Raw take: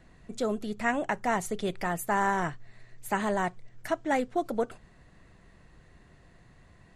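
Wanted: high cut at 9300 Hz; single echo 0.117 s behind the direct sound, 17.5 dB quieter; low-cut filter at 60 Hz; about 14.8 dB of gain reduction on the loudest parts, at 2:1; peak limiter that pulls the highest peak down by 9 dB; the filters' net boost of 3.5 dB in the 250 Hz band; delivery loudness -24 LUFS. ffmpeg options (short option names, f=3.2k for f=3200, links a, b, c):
-af "highpass=60,lowpass=9.3k,equalizer=f=250:t=o:g=4.5,acompressor=threshold=-50dB:ratio=2,alimiter=level_in=11dB:limit=-24dB:level=0:latency=1,volume=-11dB,aecho=1:1:117:0.133,volume=21.5dB"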